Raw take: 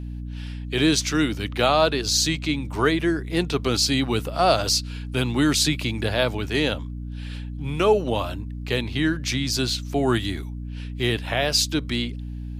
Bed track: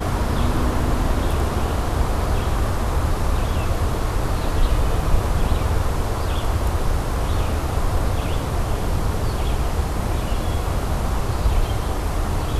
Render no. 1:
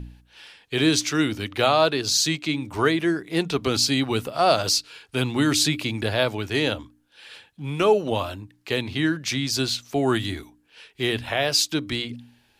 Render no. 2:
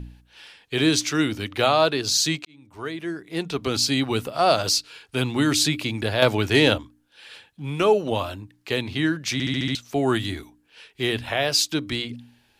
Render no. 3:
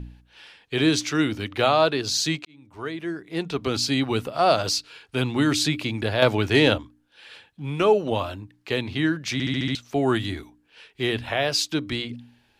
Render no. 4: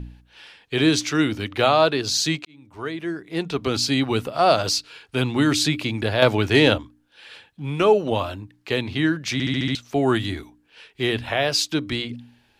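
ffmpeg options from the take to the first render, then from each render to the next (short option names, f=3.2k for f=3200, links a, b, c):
-af "bandreject=f=60:t=h:w=4,bandreject=f=120:t=h:w=4,bandreject=f=180:t=h:w=4,bandreject=f=240:t=h:w=4,bandreject=f=300:t=h:w=4"
-filter_complex "[0:a]asettb=1/sr,asplit=3[a][b][c];[a]atrim=end=6.224[d];[b]atrim=start=6.22:end=6.78,asetpts=PTS-STARTPTS,afade=t=in:d=0.004:c=qsin,afade=t=out:st=0.556:d=0.004:c=qsin,acontrast=59[e];[c]atrim=start=6.776[f];[d][e]acrossfade=d=0.004:c1=hsin:c2=qsin[g];[g][f]acrossfade=d=0.004:c1=qsin:c2=hsin,asplit=8[h][i][j][k][l][m][n][o];[h]atrim=end=2.45,asetpts=PTS-STARTPTS,afade=t=out:st=2.446:d=0.004:c=hsin[p];[i]atrim=start=2.45:end=9.402,asetpts=PTS-STARTPTS,afade=t=in:d=1.53[q];[j]atrim=start=9.328:end=9.402[r];[k]atrim=start=9.328:end=9.402[s];[l]atrim=start=9.328:end=9.402[t];[m]atrim=start=9.328:end=9.402[u];[n]atrim=start=9.328:end=9.402[v];[o]atrim=start=9.748[w];[p][q]concat=n=2:v=0:a=1[x];[x][r]acrossfade=d=0.004:c1=hsin:c2=hsin[y];[y][s]acrossfade=d=0.004:c1=hsin:c2=hsin[z];[z][t]acrossfade=d=0.004:c1=hsin:c2=hsin[aa];[aa][u]acrossfade=d=0.004:c1=hsin:c2=hsin[ab];[ab][v]acrossfade=d=0.004:c1=hsin:c2=hsin[ac];[ac][w]acrossfade=d=0.004:c1=hsin:c2=hsin"
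-af "highshelf=f=5.9k:g=-8"
-af "volume=2dB"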